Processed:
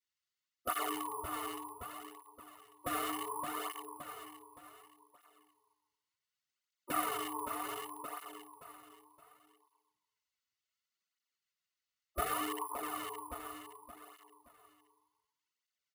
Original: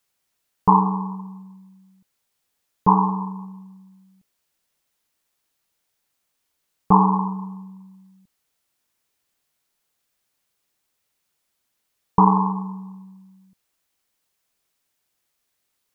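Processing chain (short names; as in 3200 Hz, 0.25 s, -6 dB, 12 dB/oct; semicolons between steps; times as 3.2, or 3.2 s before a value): Wiener smoothing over 25 samples; spectral gate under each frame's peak -20 dB weak; tilt shelf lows +6 dB, about 1100 Hz; feedback echo 0.57 s, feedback 36%, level -10.5 dB; on a send at -20 dB: reverb RT60 0.45 s, pre-delay 5 ms; on the sum: careless resampling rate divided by 4×, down none, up hold; in parallel at -1 dB: negative-ratio compressor -48 dBFS, ratio -1; on the sum: bell 340 Hz -14 dB 2.9 oct; notch comb 800 Hz; tape flanging out of phase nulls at 0.67 Hz, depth 5.9 ms; gain +11.5 dB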